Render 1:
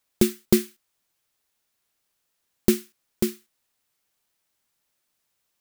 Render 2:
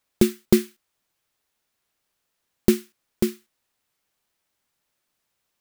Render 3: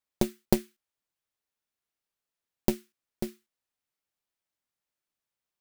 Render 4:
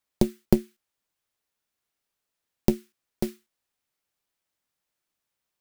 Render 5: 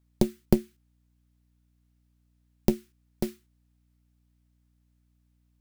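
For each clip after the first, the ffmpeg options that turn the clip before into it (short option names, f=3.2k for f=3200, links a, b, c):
-af "highshelf=f=4.1k:g=-5,volume=2dB"
-af "aeval=exprs='0.891*(cos(1*acos(clip(val(0)/0.891,-1,1)))-cos(1*PI/2))+0.178*(cos(2*acos(clip(val(0)/0.891,-1,1)))-cos(2*PI/2))+0.224*(cos(3*acos(clip(val(0)/0.891,-1,1)))-cos(3*PI/2))+0.0158*(cos(5*acos(clip(val(0)/0.891,-1,1)))-cos(5*PI/2))':c=same,volume=-4dB"
-filter_complex "[0:a]acrossover=split=480[a][b];[b]acompressor=threshold=-37dB:ratio=6[c];[a][c]amix=inputs=2:normalize=0,volume=5.5dB"
-af "aeval=exprs='val(0)+0.000562*(sin(2*PI*60*n/s)+sin(2*PI*2*60*n/s)/2+sin(2*PI*3*60*n/s)/3+sin(2*PI*4*60*n/s)/4+sin(2*PI*5*60*n/s)/5)':c=same,volume=-1.5dB"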